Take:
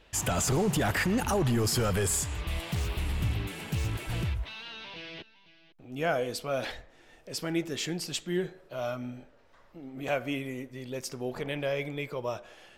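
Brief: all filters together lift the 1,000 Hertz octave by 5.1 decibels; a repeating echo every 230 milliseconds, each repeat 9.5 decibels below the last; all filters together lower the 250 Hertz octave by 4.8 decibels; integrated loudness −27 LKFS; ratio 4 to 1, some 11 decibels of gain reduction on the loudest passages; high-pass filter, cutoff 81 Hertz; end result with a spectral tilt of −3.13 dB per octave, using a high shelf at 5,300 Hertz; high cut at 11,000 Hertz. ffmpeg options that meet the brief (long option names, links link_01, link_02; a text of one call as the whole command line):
ffmpeg -i in.wav -af "highpass=81,lowpass=11000,equalizer=frequency=250:width_type=o:gain=-7.5,equalizer=frequency=1000:width_type=o:gain=7.5,highshelf=frequency=5300:gain=8.5,acompressor=threshold=-35dB:ratio=4,aecho=1:1:230|460|690|920:0.335|0.111|0.0365|0.012,volume=10.5dB" out.wav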